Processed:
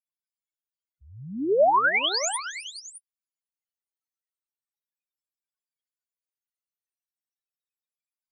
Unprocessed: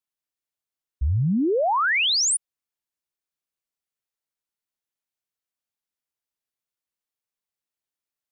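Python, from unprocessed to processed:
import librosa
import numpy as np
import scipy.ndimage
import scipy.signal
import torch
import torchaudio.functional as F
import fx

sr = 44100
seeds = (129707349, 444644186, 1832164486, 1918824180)

y = fx.spec_ripple(x, sr, per_octave=1.8, drift_hz=-0.38, depth_db=8)
y = scipy.signal.sosfilt(scipy.signal.butter(2, 680.0, 'highpass', fs=sr, output='sos'), y)
y = fx.over_compress(y, sr, threshold_db=-23.0, ratio=-0.5)
y = fx.spec_topn(y, sr, count=4)
y = fx.echo_multitap(y, sr, ms=(267, 426, 612), db=(-15.5, -19.0, -14.0))
y = y * librosa.db_to_amplitude(5.0)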